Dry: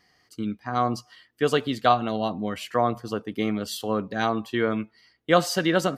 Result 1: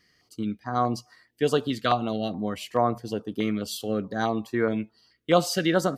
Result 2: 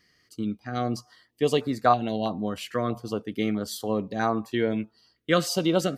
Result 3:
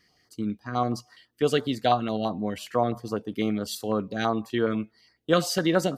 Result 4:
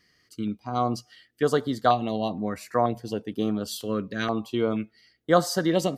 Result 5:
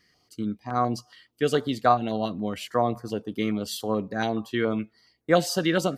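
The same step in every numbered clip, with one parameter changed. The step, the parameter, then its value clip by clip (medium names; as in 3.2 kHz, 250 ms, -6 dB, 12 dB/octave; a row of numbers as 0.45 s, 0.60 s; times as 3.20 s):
step-sequenced notch, rate: 4.7 Hz, 3.1 Hz, 12 Hz, 2.1 Hz, 7.1 Hz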